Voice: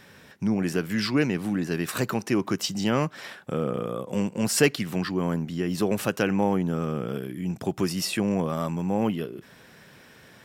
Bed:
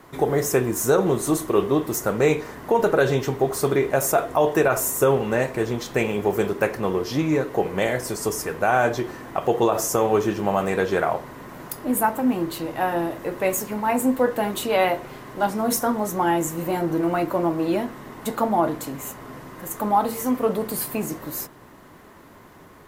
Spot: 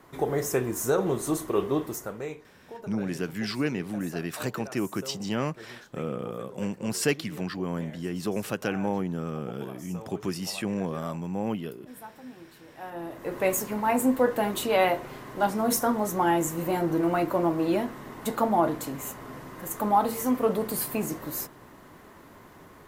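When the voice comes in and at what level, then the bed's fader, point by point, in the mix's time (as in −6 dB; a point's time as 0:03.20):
2.45 s, −5.0 dB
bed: 0:01.82 −6 dB
0:02.52 −23.5 dB
0:12.60 −23.5 dB
0:13.37 −2.5 dB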